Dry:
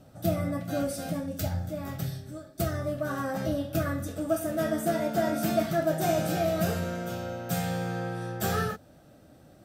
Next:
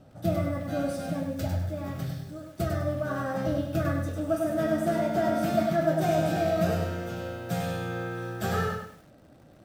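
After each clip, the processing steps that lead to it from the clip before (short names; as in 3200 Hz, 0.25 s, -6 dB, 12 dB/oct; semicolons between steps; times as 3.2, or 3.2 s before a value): high shelf 5900 Hz -11 dB; lo-fi delay 0.1 s, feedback 35%, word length 9-bit, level -5 dB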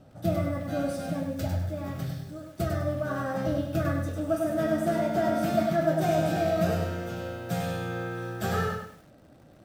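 nothing audible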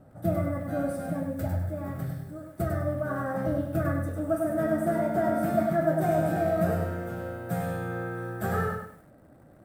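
band shelf 4100 Hz -12 dB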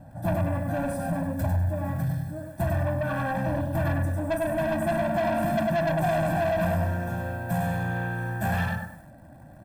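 soft clip -28.5 dBFS, distortion -9 dB; comb 1.2 ms, depth 99%; gain +3.5 dB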